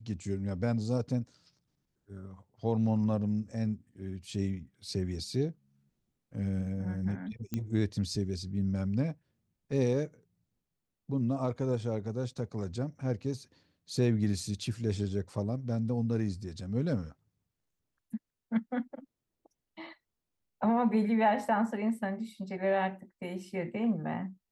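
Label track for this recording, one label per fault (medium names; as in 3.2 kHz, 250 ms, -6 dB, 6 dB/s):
7.540000	7.540000	pop -20 dBFS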